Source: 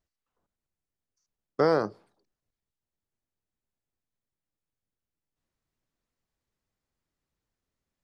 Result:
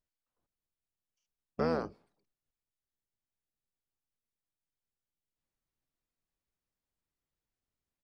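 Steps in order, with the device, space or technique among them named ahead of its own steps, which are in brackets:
octave pedal (pitch-shifted copies added −12 semitones −4 dB)
level −8.5 dB

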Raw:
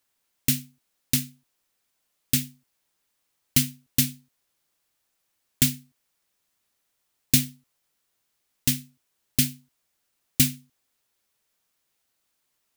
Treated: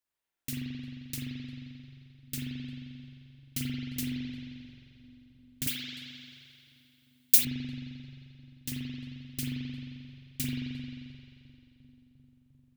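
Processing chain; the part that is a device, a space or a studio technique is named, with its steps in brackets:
dub delay into a spring reverb (feedback echo with a low-pass in the loop 351 ms, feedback 80%, low-pass 1,100 Hz, level −17 dB; spring reverb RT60 2.5 s, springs 44 ms, chirp 45 ms, DRR −6.5 dB)
0:05.67–0:07.45: spectral tilt +4.5 dB per octave
level −15.5 dB

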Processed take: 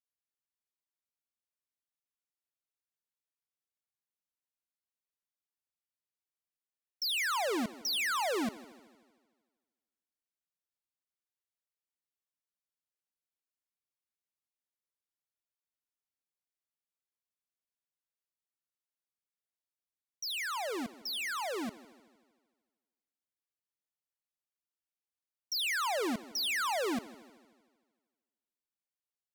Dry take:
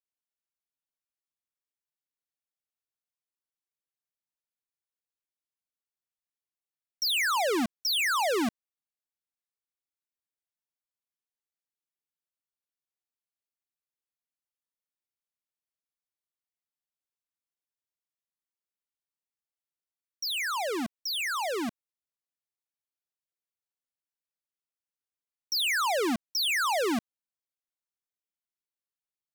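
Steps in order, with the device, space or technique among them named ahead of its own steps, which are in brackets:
multi-head tape echo (echo machine with several playback heads 77 ms, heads first and second, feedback 58%, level −22 dB; tape wow and flutter)
level −5.5 dB

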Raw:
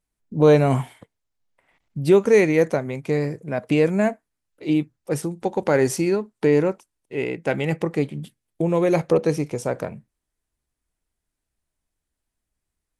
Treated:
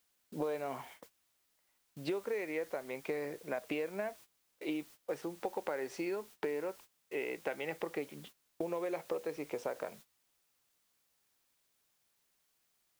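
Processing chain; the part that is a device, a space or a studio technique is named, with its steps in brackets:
baby monitor (band-pass filter 450–3,400 Hz; downward compressor 12 to 1, threshold −31 dBFS, peak gain reduction 18 dB; white noise bed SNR 19 dB; noise gate −51 dBFS, range −17 dB)
level −2.5 dB

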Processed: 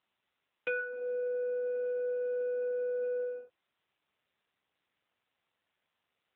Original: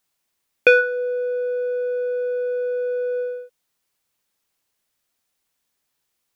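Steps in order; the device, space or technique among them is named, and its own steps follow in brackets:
0:00.71–0:01.94: dynamic equaliser 930 Hz, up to −4 dB, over −39 dBFS, Q 4.6
voicemail (band-pass filter 400–3,300 Hz; downward compressor 6 to 1, threshold −24 dBFS, peak gain reduction 14 dB; level −4.5 dB; AMR narrowband 7.4 kbit/s 8,000 Hz)

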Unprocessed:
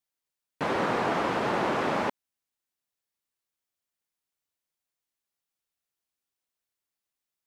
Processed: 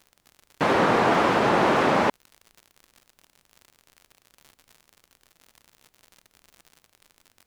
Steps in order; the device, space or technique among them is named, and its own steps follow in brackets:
vinyl LP (tape wow and flutter; surface crackle 77 per second −43 dBFS; pink noise bed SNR 45 dB)
level +7 dB

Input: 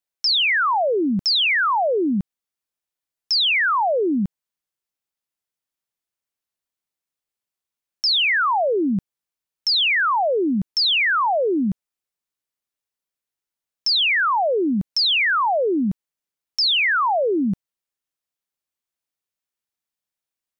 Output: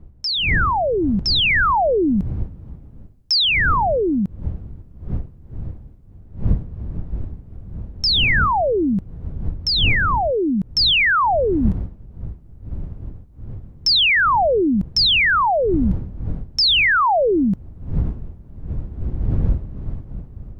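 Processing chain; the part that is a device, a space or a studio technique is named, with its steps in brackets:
0:00.72–0:02.01: high-frequency loss of the air 65 metres
smartphone video outdoors (wind on the microphone 87 Hz −27 dBFS; automatic gain control gain up to 7.5 dB; level −4 dB; AAC 128 kbit/s 44,100 Hz)

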